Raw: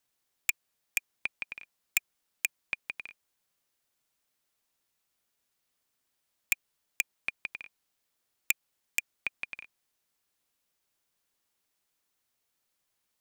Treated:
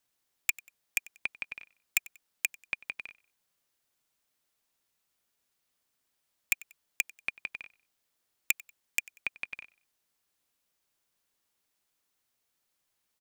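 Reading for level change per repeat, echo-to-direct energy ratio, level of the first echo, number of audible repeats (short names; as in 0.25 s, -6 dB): -9.0 dB, -21.5 dB, -22.0 dB, 2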